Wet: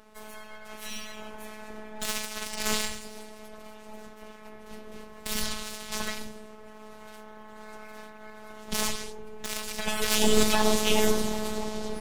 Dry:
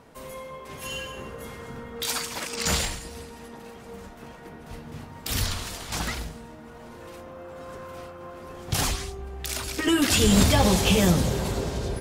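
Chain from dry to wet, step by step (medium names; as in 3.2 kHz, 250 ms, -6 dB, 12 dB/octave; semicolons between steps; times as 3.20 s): robot voice 215 Hz; full-wave rectifier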